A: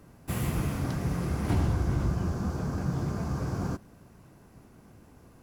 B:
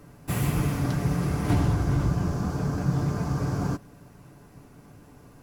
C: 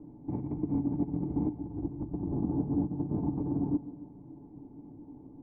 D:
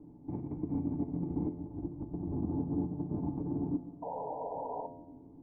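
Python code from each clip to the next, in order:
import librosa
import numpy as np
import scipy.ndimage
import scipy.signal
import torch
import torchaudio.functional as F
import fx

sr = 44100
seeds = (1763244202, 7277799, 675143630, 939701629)

y1 = x + 0.38 * np.pad(x, (int(6.9 * sr / 1000.0), 0))[:len(x)]
y1 = F.gain(torch.from_numpy(y1), 3.5).numpy()
y2 = fx.over_compress(y1, sr, threshold_db=-28.0, ratio=-0.5)
y2 = fx.formant_cascade(y2, sr, vowel='u')
y2 = fx.echo_feedback(y2, sr, ms=138, feedback_pct=56, wet_db=-17.0)
y2 = F.gain(torch.from_numpy(y2), 6.0).numpy()
y3 = fx.spec_paint(y2, sr, seeds[0], shape='noise', start_s=4.02, length_s=0.85, low_hz=410.0, high_hz=1000.0, level_db=-35.0)
y3 = fx.comb_fb(y3, sr, f0_hz=86.0, decay_s=0.97, harmonics='all', damping=0.0, mix_pct=70)
y3 = F.gain(torch.from_numpy(y3), 5.0).numpy()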